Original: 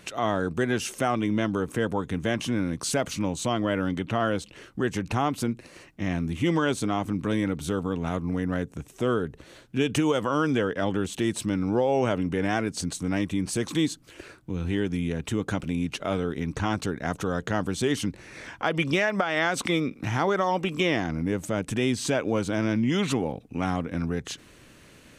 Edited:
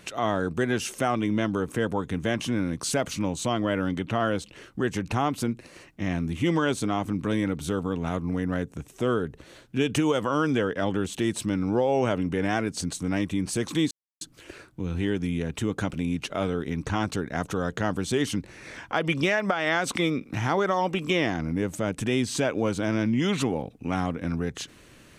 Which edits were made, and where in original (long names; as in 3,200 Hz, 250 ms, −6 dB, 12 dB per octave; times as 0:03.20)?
0:13.91: splice in silence 0.30 s